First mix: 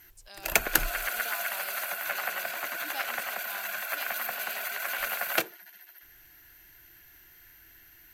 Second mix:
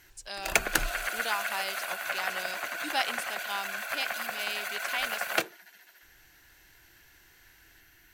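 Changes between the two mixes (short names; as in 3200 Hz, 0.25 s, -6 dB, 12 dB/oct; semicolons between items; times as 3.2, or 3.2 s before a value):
speech +10.0 dB; master: add bell 13000 Hz -13 dB 0.28 oct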